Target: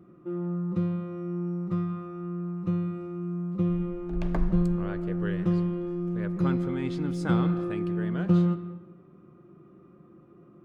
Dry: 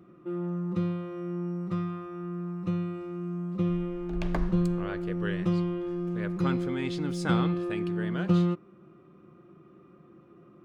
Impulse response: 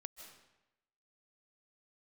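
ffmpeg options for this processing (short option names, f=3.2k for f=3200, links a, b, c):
-filter_complex "[0:a]asplit=2[a][b];[1:a]atrim=start_sample=2205,lowpass=2.2k,lowshelf=f=390:g=7[c];[b][c]afir=irnorm=-1:irlink=0,volume=1.5dB[d];[a][d]amix=inputs=2:normalize=0,volume=-5dB"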